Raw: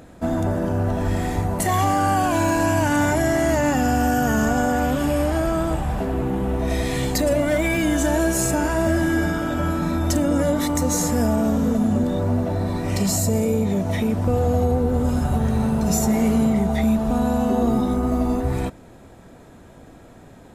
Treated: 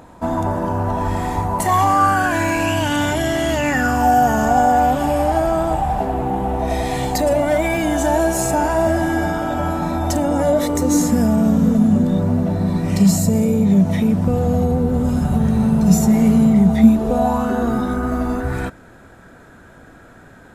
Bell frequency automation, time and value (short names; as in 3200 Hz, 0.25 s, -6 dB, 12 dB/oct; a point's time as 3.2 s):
bell +14 dB 0.48 oct
1.85 s 960 Hz
2.82 s 3200 Hz
3.56 s 3200 Hz
4.07 s 790 Hz
10.44 s 790 Hz
11.21 s 180 Hz
16.77 s 180 Hz
17.49 s 1500 Hz